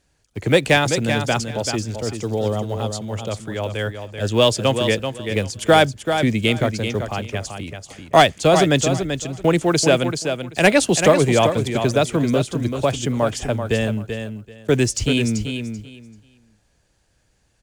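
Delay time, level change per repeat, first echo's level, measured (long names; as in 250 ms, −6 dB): 386 ms, −14.5 dB, −7.5 dB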